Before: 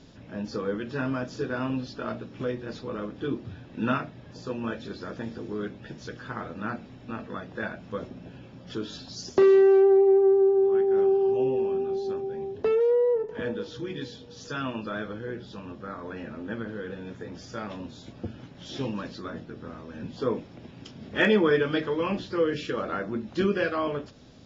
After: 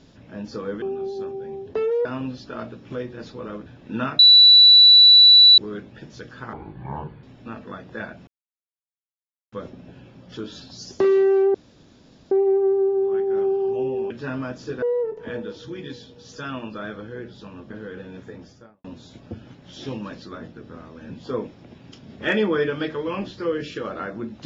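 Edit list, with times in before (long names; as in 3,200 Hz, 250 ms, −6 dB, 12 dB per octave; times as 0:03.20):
0:00.82–0:01.54: swap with 0:11.71–0:12.94
0:03.15–0:03.54: remove
0:04.07–0:05.46: beep over 3,950 Hz −7 dBFS
0:06.41–0:06.86: play speed 64%
0:07.90: splice in silence 1.25 s
0:09.92: splice in room tone 0.77 s
0:15.82–0:16.63: remove
0:17.21–0:17.77: fade out and dull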